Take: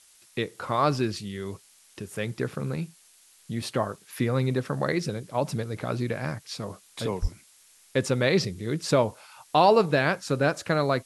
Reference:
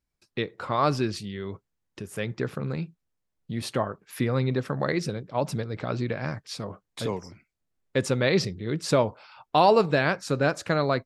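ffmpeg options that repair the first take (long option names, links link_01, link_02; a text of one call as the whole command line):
ffmpeg -i in.wav -filter_complex "[0:a]asplit=3[link_01][link_02][link_03];[link_01]afade=type=out:start_time=7.21:duration=0.02[link_04];[link_02]highpass=frequency=140:width=0.5412,highpass=frequency=140:width=1.3066,afade=type=in:start_time=7.21:duration=0.02,afade=type=out:start_time=7.33:duration=0.02[link_05];[link_03]afade=type=in:start_time=7.33:duration=0.02[link_06];[link_04][link_05][link_06]amix=inputs=3:normalize=0,afftdn=noise_reduction=21:noise_floor=-57" out.wav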